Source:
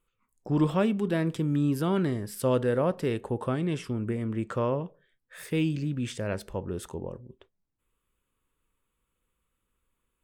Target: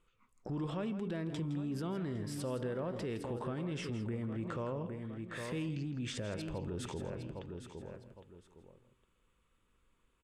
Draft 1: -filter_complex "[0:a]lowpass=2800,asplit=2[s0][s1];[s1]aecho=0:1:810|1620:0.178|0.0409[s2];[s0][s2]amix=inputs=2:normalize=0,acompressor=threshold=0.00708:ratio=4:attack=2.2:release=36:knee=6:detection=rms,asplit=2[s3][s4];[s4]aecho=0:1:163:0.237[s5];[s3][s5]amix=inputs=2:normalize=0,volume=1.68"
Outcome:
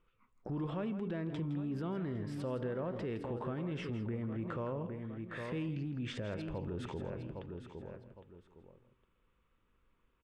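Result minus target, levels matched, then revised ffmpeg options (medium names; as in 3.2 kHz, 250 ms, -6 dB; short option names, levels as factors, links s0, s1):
8 kHz band -12.5 dB
-filter_complex "[0:a]lowpass=6800,asplit=2[s0][s1];[s1]aecho=0:1:810|1620:0.178|0.0409[s2];[s0][s2]amix=inputs=2:normalize=0,acompressor=threshold=0.00708:ratio=4:attack=2.2:release=36:knee=6:detection=rms,asplit=2[s3][s4];[s4]aecho=0:1:163:0.237[s5];[s3][s5]amix=inputs=2:normalize=0,volume=1.68"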